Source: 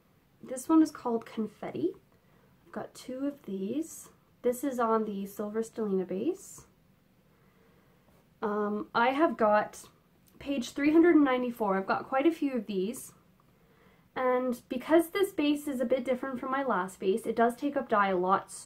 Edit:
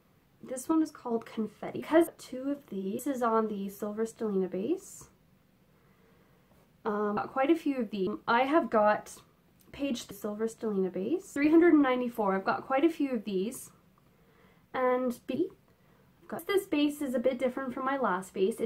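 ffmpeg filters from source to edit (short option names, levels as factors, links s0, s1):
-filter_complex "[0:a]asplit=12[s0][s1][s2][s3][s4][s5][s6][s7][s8][s9][s10][s11];[s0]atrim=end=0.722[s12];[s1]atrim=start=0.718:end=1.112,asetpts=PTS-STARTPTS,volume=0.562[s13];[s2]atrim=start=1.108:end=1.802[s14];[s3]atrim=start=14.778:end=15.052[s15];[s4]atrim=start=2.828:end=3.752[s16];[s5]atrim=start=4.558:end=8.742[s17];[s6]atrim=start=11.928:end=12.832[s18];[s7]atrim=start=8.738:end=10.782[s19];[s8]atrim=start=5.258:end=6.512[s20];[s9]atrim=start=10.778:end=14.782[s21];[s10]atrim=start=1.798:end=2.832[s22];[s11]atrim=start=15.048[s23];[s12][s13]acrossfade=d=0.004:c1=hsin:c2=hsin[s24];[s24][s14]acrossfade=d=0.004:c1=hsin:c2=hsin[s25];[s25][s15]acrossfade=d=0.004:c1=hsin:c2=hsin[s26];[s26][s16]acrossfade=d=0.004:c1=hsin:c2=hsin[s27];[s27][s17]acrossfade=d=0.004:c1=hsin:c2=hsin[s28];[s28][s18]acrossfade=d=0.004:c1=hsin:c2=hsin[s29];[s29][s19]acrossfade=d=0.004:c1=hsin:c2=hsin[s30];[s30][s20]acrossfade=d=0.004:c1=hsin:c2=hsin[s31];[s31][s21]acrossfade=d=0.004:c1=hsin:c2=hsin[s32];[s32][s22]acrossfade=d=0.004:c1=hsin:c2=hsin[s33];[s33][s23]acrossfade=d=0.004:c1=hsin:c2=hsin"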